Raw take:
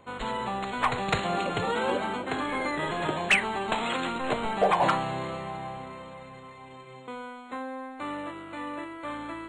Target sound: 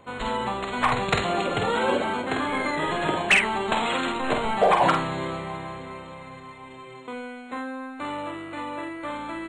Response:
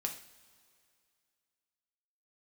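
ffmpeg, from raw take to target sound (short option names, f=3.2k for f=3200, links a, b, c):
-filter_complex "[0:a]asplit=2[a][b];[b]adelay=49,volume=-5dB[c];[a][c]amix=inputs=2:normalize=0,volume=3dB"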